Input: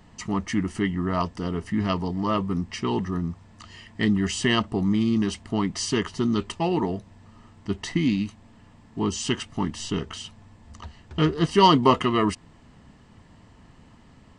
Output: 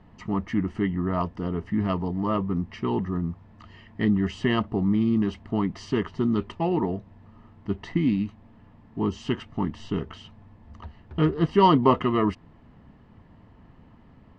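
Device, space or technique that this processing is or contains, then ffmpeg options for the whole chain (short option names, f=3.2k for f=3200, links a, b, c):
phone in a pocket: -af "lowpass=3.7k,highshelf=f=2.1k:g=-10"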